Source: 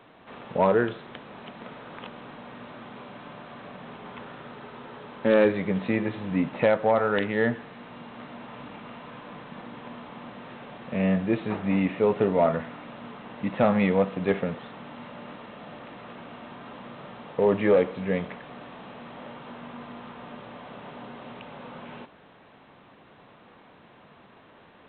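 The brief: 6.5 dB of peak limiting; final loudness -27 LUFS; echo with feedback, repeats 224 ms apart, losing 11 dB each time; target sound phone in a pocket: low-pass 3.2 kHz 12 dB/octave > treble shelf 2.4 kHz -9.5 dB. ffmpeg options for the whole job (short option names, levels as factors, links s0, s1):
-af "alimiter=limit=0.141:level=0:latency=1,lowpass=3200,highshelf=f=2400:g=-9.5,aecho=1:1:224|448|672:0.282|0.0789|0.0221,volume=1.5"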